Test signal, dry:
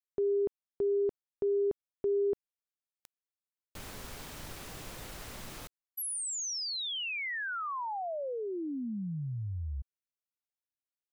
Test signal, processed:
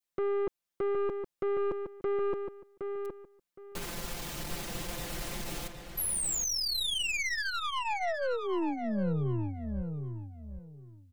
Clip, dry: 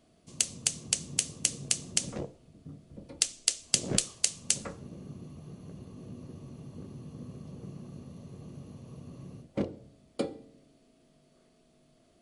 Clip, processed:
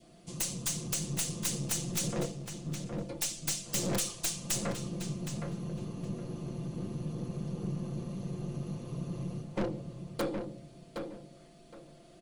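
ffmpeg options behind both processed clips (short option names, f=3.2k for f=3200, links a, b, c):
-filter_complex "[0:a]aeval=exprs='(mod(8.41*val(0)+1,2)-1)/8.41':c=same,aecho=1:1:5.8:0.72,aeval=exprs='(tanh(50.1*val(0)+0.3)-tanh(0.3))/50.1':c=same,adynamicequalizer=threshold=0.00126:dfrequency=1300:dqfactor=1.6:tfrequency=1300:tqfactor=1.6:attack=5:release=100:ratio=0.375:range=2:mode=cutabove:tftype=bell,asplit=2[a][b];[b]adelay=766,lowpass=f=3.8k:p=1,volume=-6dB,asplit=2[c][d];[d]adelay=766,lowpass=f=3.8k:p=1,volume=0.23,asplit=2[e][f];[f]adelay=766,lowpass=f=3.8k:p=1,volume=0.23[g];[a][c][e][g]amix=inputs=4:normalize=0,volume=6dB"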